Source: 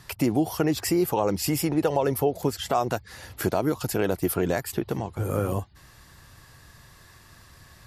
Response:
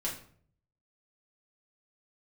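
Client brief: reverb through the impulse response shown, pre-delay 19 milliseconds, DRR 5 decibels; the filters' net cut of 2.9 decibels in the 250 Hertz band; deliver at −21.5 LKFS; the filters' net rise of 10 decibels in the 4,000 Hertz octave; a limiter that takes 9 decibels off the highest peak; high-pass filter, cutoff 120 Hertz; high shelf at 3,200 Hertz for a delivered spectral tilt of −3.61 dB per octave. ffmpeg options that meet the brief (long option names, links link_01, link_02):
-filter_complex "[0:a]highpass=120,equalizer=frequency=250:width_type=o:gain=-4,highshelf=frequency=3200:gain=6.5,equalizer=frequency=4000:width_type=o:gain=8,alimiter=limit=-16.5dB:level=0:latency=1,asplit=2[link_01][link_02];[1:a]atrim=start_sample=2205,adelay=19[link_03];[link_02][link_03]afir=irnorm=-1:irlink=0,volume=-8dB[link_04];[link_01][link_04]amix=inputs=2:normalize=0,volume=5dB"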